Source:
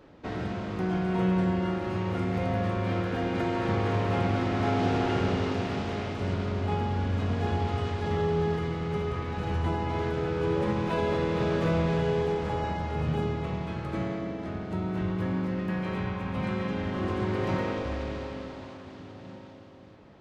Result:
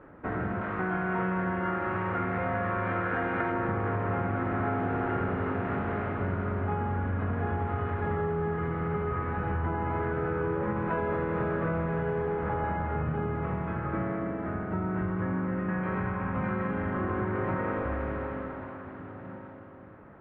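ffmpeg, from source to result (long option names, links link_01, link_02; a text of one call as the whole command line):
ffmpeg -i in.wav -filter_complex "[0:a]asettb=1/sr,asplit=3[link_01][link_02][link_03];[link_01]atrim=end=0.614[link_04];[link_02]atrim=start=0.61:end=3.52,asetpts=PTS-STARTPTS,afade=type=in:duration=0.004:curve=qsin,afade=type=out:start_time=2.906:duration=0.004:curve=qsin,tiltshelf=frequency=640:gain=-5[link_05];[link_03]atrim=start=3.516[link_06];[link_04][link_05]acrossfade=duration=0.004:curve1=hsin:curve2=qsin[link_07];[link_07][link_06]acrossfade=duration=0.004:curve1=qsin:curve2=hsin,acompressor=threshold=-28dB:ratio=6,lowpass=frequency=2000:width=0.5412,lowpass=frequency=2000:width=1.3066,equalizer=frequency=1400:width_type=o:width=0.81:gain=7,volume=1.5dB" out.wav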